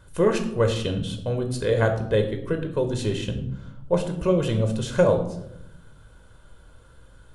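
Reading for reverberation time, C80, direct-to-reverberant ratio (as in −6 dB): 0.80 s, 12.0 dB, 5.0 dB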